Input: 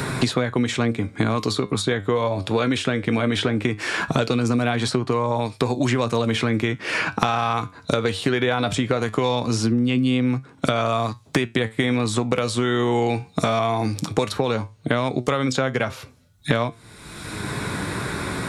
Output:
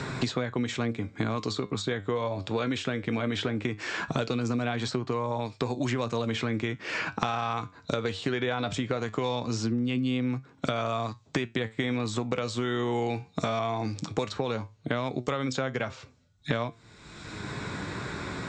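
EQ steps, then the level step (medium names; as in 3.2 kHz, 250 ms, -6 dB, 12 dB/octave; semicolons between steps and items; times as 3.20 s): steep low-pass 7.9 kHz 72 dB/octave; -8.0 dB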